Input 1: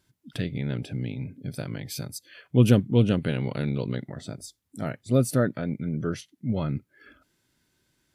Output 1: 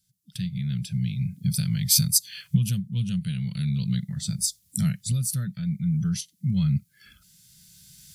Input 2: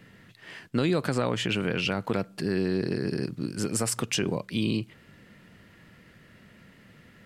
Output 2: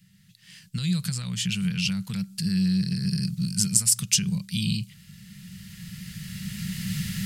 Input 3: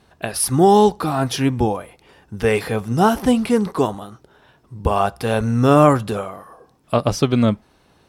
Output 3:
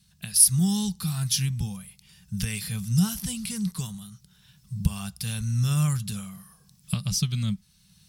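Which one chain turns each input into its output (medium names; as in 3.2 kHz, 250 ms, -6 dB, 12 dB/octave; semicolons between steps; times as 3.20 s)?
recorder AGC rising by 9.6 dB/s; FFT filter 100 Hz 0 dB, 190 Hz +7 dB, 270 Hz -24 dB, 620 Hz -26 dB, 4.8 kHz +8 dB, 9.6 kHz +11 dB; trim -7.5 dB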